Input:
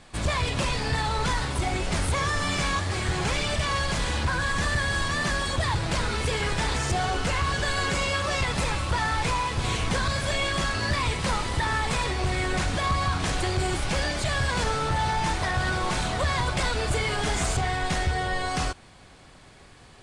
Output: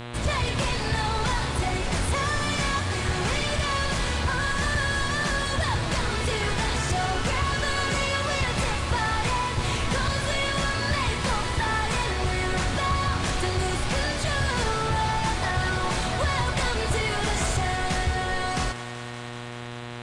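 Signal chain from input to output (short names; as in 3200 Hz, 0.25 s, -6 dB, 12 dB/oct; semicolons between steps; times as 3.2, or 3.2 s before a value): thinning echo 0.191 s, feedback 84%, level -14.5 dB; buzz 120 Hz, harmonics 34, -37 dBFS -4 dB/oct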